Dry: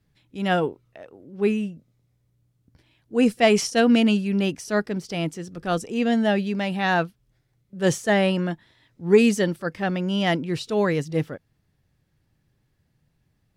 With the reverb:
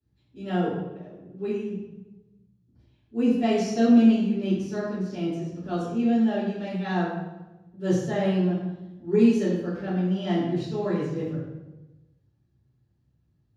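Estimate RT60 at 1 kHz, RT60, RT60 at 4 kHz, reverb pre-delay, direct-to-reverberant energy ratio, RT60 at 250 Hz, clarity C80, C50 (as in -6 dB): 1.0 s, 1.1 s, 0.75 s, 3 ms, -15.5 dB, 1.4 s, 3.5 dB, 0.5 dB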